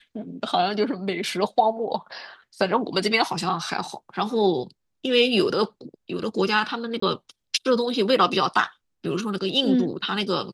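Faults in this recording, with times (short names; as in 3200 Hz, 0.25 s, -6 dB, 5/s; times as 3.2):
7–7.02 gap 24 ms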